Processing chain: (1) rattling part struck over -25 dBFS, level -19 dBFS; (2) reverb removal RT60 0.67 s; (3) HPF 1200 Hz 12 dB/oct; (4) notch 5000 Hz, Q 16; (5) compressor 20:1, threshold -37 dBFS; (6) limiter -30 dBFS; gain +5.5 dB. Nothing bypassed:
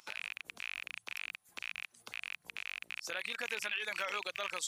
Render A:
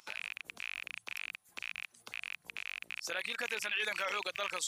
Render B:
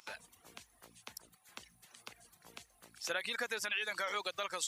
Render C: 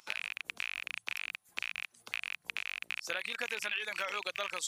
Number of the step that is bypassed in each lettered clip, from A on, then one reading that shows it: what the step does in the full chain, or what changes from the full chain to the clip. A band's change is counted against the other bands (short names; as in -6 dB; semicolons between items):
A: 5, mean gain reduction 6.5 dB; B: 1, 2 kHz band -3.5 dB; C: 6, mean gain reduction 2.0 dB